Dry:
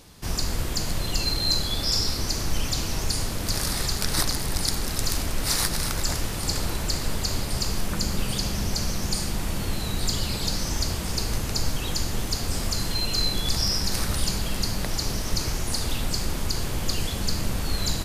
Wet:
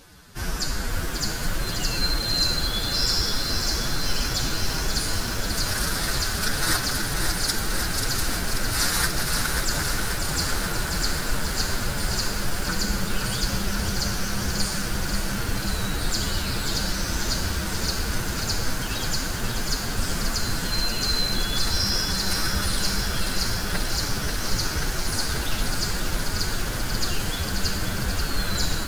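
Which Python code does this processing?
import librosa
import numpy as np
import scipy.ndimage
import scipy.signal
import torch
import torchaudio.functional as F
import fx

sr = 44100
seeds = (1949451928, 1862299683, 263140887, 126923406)

y = fx.peak_eq(x, sr, hz=1500.0, db=10.5, octaves=0.43)
y = fx.stretch_vocoder(y, sr, factor=1.6)
y = fx.echo_crushed(y, sr, ms=536, feedback_pct=80, bits=7, wet_db=-6)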